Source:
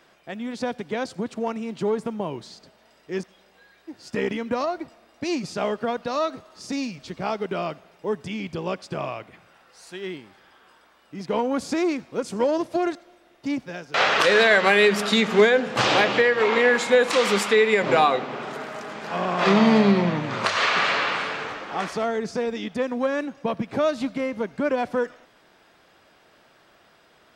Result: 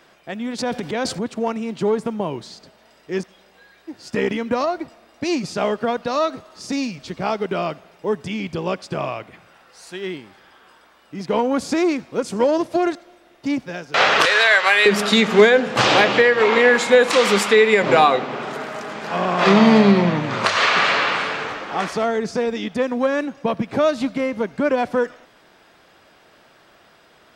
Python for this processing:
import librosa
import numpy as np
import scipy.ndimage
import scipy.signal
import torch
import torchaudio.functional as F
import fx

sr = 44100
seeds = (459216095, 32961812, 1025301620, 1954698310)

y = fx.transient(x, sr, attack_db=-3, sustain_db=10, at=(0.58, 1.24))
y = fx.highpass(y, sr, hz=840.0, slope=12, at=(14.25, 14.86))
y = y * librosa.db_to_amplitude(4.5)